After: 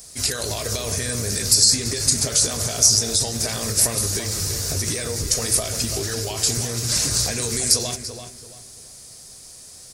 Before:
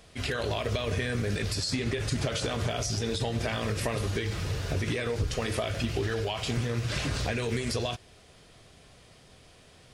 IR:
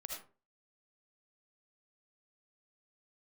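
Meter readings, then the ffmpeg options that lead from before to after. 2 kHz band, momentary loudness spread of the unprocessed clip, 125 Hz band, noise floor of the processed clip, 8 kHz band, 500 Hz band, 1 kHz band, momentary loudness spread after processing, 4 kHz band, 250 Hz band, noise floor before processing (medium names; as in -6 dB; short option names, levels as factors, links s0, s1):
+1.0 dB, 2 LU, +2.0 dB, -43 dBFS, +22.5 dB, +1.5 dB, +1.5 dB, 13 LU, +12.5 dB, +2.0 dB, -56 dBFS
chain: -filter_complex "[0:a]aexciter=amount=12.2:drive=4.1:freq=4600,asplit=2[s0][s1];[s1]adelay=337,lowpass=f=2500:p=1,volume=0.422,asplit=2[s2][s3];[s3]adelay=337,lowpass=f=2500:p=1,volume=0.31,asplit=2[s4][s5];[s5]adelay=337,lowpass=f=2500:p=1,volume=0.31,asplit=2[s6][s7];[s7]adelay=337,lowpass=f=2500:p=1,volume=0.31[s8];[s0][s2][s4][s6][s8]amix=inputs=5:normalize=0,volume=1.12"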